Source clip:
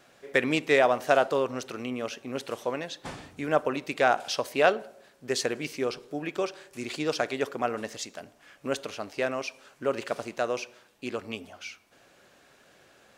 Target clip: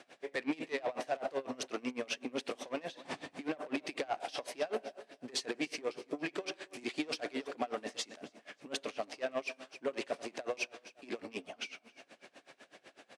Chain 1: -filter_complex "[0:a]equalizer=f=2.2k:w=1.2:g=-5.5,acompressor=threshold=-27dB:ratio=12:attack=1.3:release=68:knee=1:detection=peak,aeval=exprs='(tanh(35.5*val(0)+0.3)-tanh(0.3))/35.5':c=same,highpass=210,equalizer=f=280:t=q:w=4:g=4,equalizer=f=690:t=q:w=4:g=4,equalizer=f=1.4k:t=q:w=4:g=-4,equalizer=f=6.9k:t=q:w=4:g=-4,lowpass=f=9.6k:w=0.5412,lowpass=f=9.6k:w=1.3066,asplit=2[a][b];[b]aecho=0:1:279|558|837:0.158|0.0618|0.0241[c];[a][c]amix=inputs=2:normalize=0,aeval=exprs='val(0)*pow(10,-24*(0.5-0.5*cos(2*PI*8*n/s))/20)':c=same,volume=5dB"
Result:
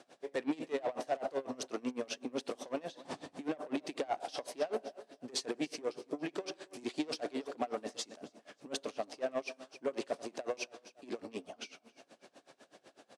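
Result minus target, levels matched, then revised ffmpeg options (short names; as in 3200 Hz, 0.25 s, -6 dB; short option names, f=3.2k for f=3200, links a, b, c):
2000 Hz band -5.0 dB
-filter_complex "[0:a]equalizer=f=2.2k:w=1.2:g=3.5,acompressor=threshold=-27dB:ratio=12:attack=1.3:release=68:knee=1:detection=peak,aeval=exprs='(tanh(35.5*val(0)+0.3)-tanh(0.3))/35.5':c=same,highpass=210,equalizer=f=280:t=q:w=4:g=4,equalizer=f=690:t=q:w=4:g=4,equalizer=f=1.4k:t=q:w=4:g=-4,equalizer=f=6.9k:t=q:w=4:g=-4,lowpass=f=9.6k:w=0.5412,lowpass=f=9.6k:w=1.3066,asplit=2[a][b];[b]aecho=0:1:279|558|837:0.158|0.0618|0.0241[c];[a][c]amix=inputs=2:normalize=0,aeval=exprs='val(0)*pow(10,-24*(0.5-0.5*cos(2*PI*8*n/s))/20)':c=same,volume=5dB"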